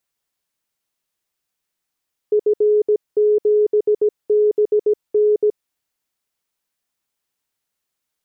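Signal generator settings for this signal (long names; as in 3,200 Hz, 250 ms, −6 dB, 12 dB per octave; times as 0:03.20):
Morse code "F7BN" 17 words per minute 421 Hz −11.5 dBFS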